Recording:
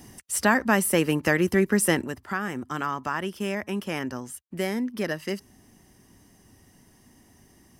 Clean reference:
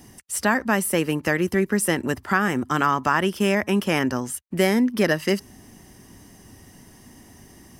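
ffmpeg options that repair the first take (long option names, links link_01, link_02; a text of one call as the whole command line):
ffmpeg -i in.wav -af "asetnsamples=nb_out_samples=441:pad=0,asendcmd='2.04 volume volume 8.5dB',volume=0dB" out.wav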